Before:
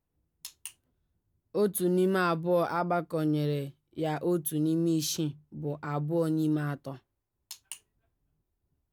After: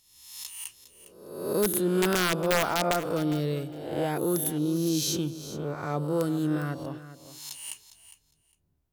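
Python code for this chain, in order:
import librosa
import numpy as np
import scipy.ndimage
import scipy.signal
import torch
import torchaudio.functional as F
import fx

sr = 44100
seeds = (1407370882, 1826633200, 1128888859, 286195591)

y = fx.spec_swells(x, sr, rise_s=0.89)
y = (np.mod(10.0 ** (16.5 / 20.0) * y + 1.0, 2.0) - 1.0) / 10.0 ** (16.5 / 20.0)
y = fx.echo_feedback(y, sr, ms=407, feedback_pct=16, wet_db=-14)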